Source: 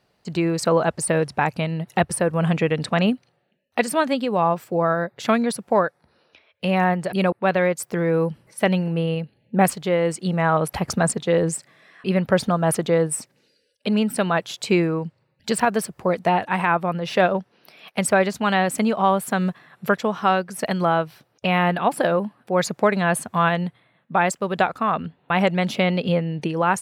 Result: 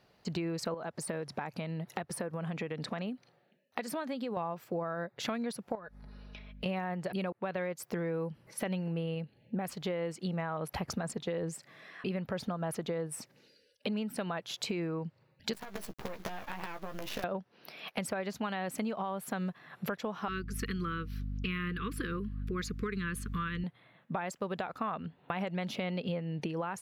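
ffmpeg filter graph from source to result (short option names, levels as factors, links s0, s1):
-filter_complex "[0:a]asettb=1/sr,asplit=3[s0][s1][s2];[s0]atrim=end=0.744[s3];[s1]atrim=start=0.74:end=4.37,asetpts=PTS-STARTPTS,afade=t=in:d=0.004:c=qsin,afade=t=out:st=3.626:d=0.004:c=qsin,equalizer=f=2800:t=o:w=0.25:g=-4,acompressor=threshold=0.0355:ratio=2.5:attack=3.2:release=140:knee=1:detection=peak,highpass=130[s4];[s2]atrim=start=4.366[s5];[s3][s4]acrossfade=d=0.004:c1=hsin:c2=qsin[s6];[s6][s5]acrossfade=d=0.004:c1=qsin:c2=hsin,asettb=1/sr,asplit=3[s7][s8][s9];[s7]atrim=end=5.754[s10];[s8]atrim=start=5.75:end=6.66,asetpts=PTS-STARTPTS,afade=t=in:d=0.004:c=qsin,afade=t=out:st=0.906:d=0.004:c=qsin,aeval=exprs='val(0)+0.00355*(sin(2*PI*50*n/s)+sin(2*PI*2*50*n/s)/2+sin(2*PI*3*50*n/s)/3+sin(2*PI*4*50*n/s)/4+sin(2*PI*5*50*n/s)/5)':c=same,acompressor=threshold=0.02:ratio=5:attack=3.2:release=140:knee=1:detection=peak,aecho=1:1:4.8:0.52,atrim=end_sample=40131[s11];[s9]atrim=start=6.656[s12];[s10][s11]acrossfade=d=0.004:c1=hsin:c2=qsin[s13];[s13][s12]acrossfade=d=0.004:c1=qsin:c2=hsin,asettb=1/sr,asplit=3[s14][s15][s16];[s14]atrim=end=15.534[s17];[s15]atrim=start=15.53:end=17.24,asetpts=PTS-STARTPTS,afade=t=in:d=0.004:c=qsin,afade=t=out:st=1.706:d=0.004:c=qsin,acompressor=threshold=0.0224:ratio=8:attack=3.2:release=140:knee=1:detection=peak,acrusher=bits=6:dc=4:mix=0:aa=0.000001,asplit=2[s18][s19];[s19]adelay=15,volume=0.447[s20];[s18][s20]amix=inputs=2:normalize=0,atrim=end_sample=75411[s21];[s16]atrim=start=17.236[s22];[s17][s21]acrossfade=d=0.004:c1=hsin:c2=qsin[s23];[s23][s22]acrossfade=d=0.004:c1=qsin:c2=hsin,asettb=1/sr,asplit=3[s24][s25][s26];[s24]atrim=end=20.284[s27];[s25]atrim=start=20.28:end=23.64,asetpts=PTS-STARTPTS,afade=t=in:d=0.004:c=qsin,afade=t=out:st=3.356:d=0.004:c=qsin,aeval=exprs='val(0)+0.0282*(sin(2*PI*50*n/s)+sin(2*PI*2*50*n/s)/2+sin(2*PI*3*50*n/s)/3+sin(2*PI*4*50*n/s)/4+sin(2*PI*5*50*n/s)/5)':c=same,asuperstop=centerf=720:order=12:qfactor=1.1[s28];[s26]atrim=start=23.636[s29];[s27][s28]acrossfade=d=0.004:c1=hsin:c2=qsin[s30];[s30][s29]acrossfade=d=0.004:c1=qsin:c2=hsin,equalizer=f=8600:t=o:w=0.41:g=-8.5,alimiter=limit=0.251:level=0:latency=1:release=85,acompressor=threshold=0.02:ratio=5"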